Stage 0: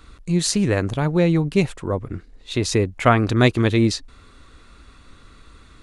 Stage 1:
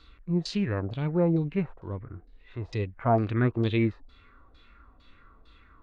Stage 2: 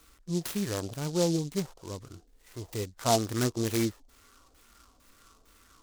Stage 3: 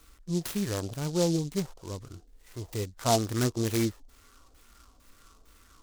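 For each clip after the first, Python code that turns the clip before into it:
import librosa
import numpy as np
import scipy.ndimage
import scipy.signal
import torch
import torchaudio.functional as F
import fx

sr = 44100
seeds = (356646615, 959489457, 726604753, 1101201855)

y1 = fx.filter_lfo_lowpass(x, sr, shape='saw_down', hz=2.2, low_hz=600.0, high_hz=4900.0, q=4.3)
y1 = fx.hpss(y1, sr, part='percussive', gain_db=-13)
y1 = y1 * 10.0 ** (-7.0 / 20.0)
y2 = fx.low_shelf(y1, sr, hz=190.0, db=-9.0)
y2 = fx.noise_mod_delay(y2, sr, seeds[0], noise_hz=5200.0, depth_ms=0.1)
y3 = fx.low_shelf(y2, sr, hz=83.0, db=7.0)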